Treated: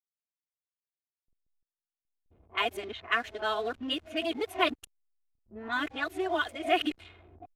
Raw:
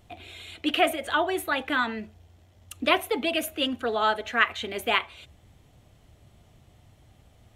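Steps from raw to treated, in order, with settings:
played backwards from end to start
comb filter 2.8 ms, depth 53%
slack as between gear wheels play −38 dBFS
low-pass that shuts in the quiet parts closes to 450 Hz, open at −22.5 dBFS
level −6.5 dB

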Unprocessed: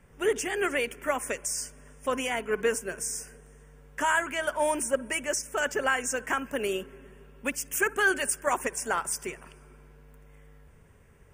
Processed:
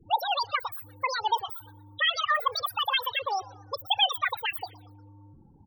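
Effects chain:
spectral peaks only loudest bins 8
on a send: echo with shifted repeats 237 ms, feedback 40%, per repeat +110 Hz, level −23 dB
on the sum: dynamic equaliser 150 Hz, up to −5 dB, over −51 dBFS, Q 1.3
wrong playback speed 7.5 ips tape played at 15 ips
level +2.5 dB

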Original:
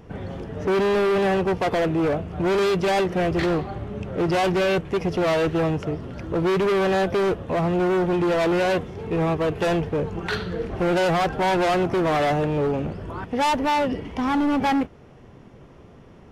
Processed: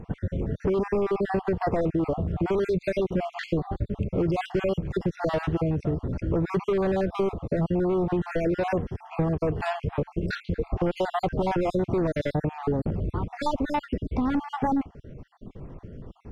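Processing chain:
time-frequency cells dropped at random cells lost 49%
spectral tilt −2.5 dB per octave
downward compressor, threshold −22 dBFS, peak gain reduction 8 dB

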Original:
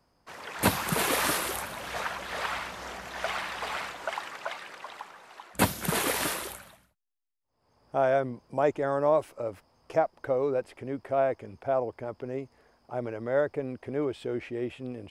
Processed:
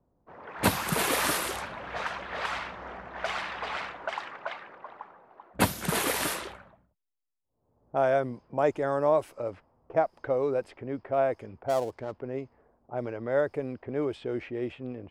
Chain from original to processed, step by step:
0:11.66–0:12.21: gap after every zero crossing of 0.08 ms
low-pass that shuts in the quiet parts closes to 580 Hz, open at −26 dBFS

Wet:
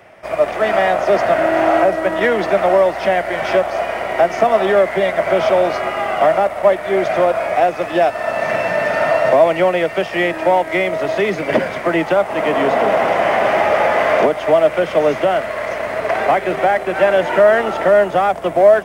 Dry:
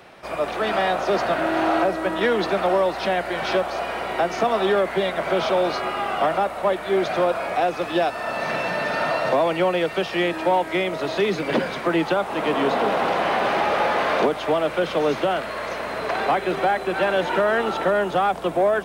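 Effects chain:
thirty-one-band graphic EQ 100 Hz +9 dB, 630 Hz +9 dB, 2,000 Hz +7 dB, 4,000 Hz −10 dB
in parallel at −4 dB: dead-zone distortion −32 dBFS
on the sum: level −1 dB

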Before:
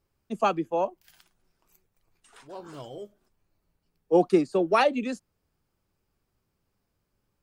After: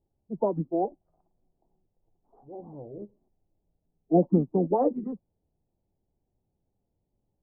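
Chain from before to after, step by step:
elliptic low-pass filter 1,000 Hz, stop band 80 dB
formants moved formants −4 semitones

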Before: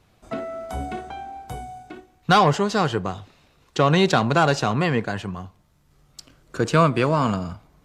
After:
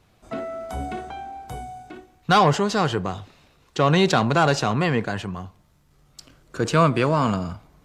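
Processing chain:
transient designer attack −2 dB, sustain +2 dB

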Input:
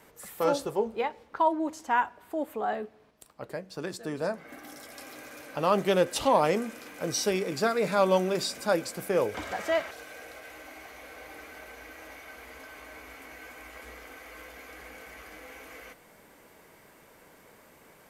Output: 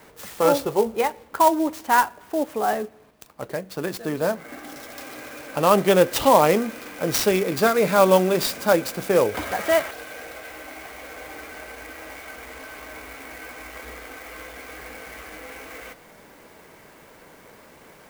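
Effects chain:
converter with an unsteady clock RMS 0.031 ms
level +7.5 dB

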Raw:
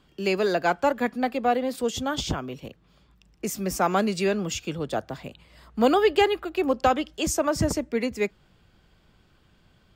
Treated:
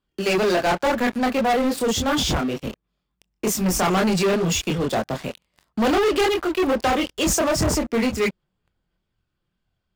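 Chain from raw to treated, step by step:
multi-voice chorus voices 6, 0.96 Hz, delay 25 ms, depth 3 ms
leveller curve on the samples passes 5
level −5.5 dB

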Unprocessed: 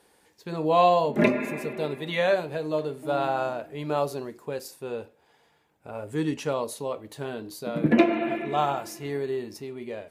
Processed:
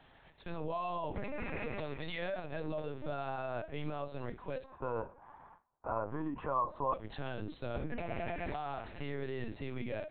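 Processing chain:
noise gate with hold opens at −54 dBFS
high-pass filter 99 Hz 24 dB per octave
parametric band 380 Hz −12 dB 0.38 octaves
mains-hum notches 60/120/180 Hz
downward compressor 8 to 1, threshold −35 dBFS, peak gain reduction 18.5 dB
brickwall limiter −33 dBFS, peak gain reduction 9 dB
0:04.64–0:06.93: low-pass with resonance 1,100 Hz, resonance Q 4.9
linear-prediction vocoder at 8 kHz pitch kept
level +3.5 dB

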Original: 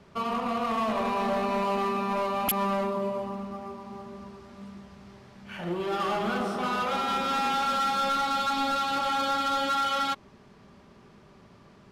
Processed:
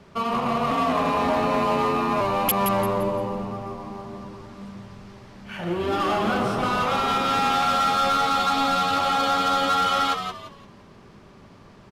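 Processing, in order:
echo with shifted repeats 172 ms, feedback 32%, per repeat −88 Hz, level −7 dB
0:00.71–0:02.21: frequency shifter +35 Hz
level +4.5 dB

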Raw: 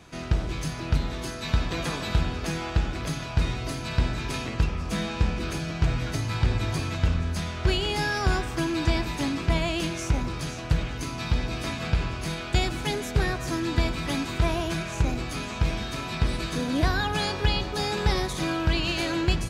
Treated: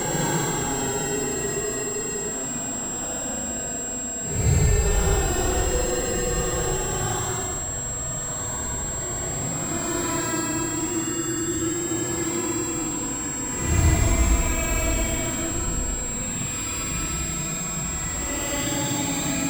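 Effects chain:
sample-and-hold swept by an LFO 11×, swing 160% 0.4 Hz
extreme stretch with random phases 15×, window 0.05 s, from 0:12.86
steady tone 7,600 Hz −28 dBFS

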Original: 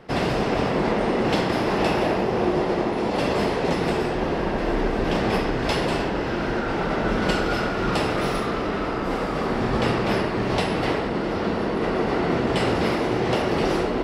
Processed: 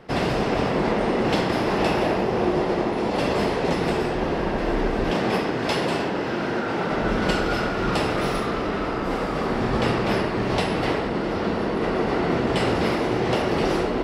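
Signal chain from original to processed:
0:05.11–0:06.92: high-pass filter 120 Hz 12 dB per octave

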